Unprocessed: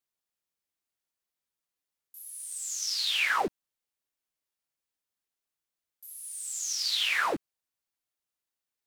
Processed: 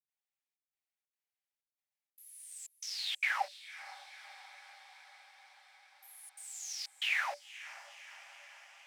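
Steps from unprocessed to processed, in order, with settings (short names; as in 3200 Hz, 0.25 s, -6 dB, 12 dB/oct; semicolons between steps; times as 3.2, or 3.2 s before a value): step gate ".xxxxxx..xxxx" 186 bpm -60 dB; rippled Chebyshev high-pass 560 Hz, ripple 9 dB; diffused feedback echo 0.515 s, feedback 69%, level -15.5 dB; gain -2 dB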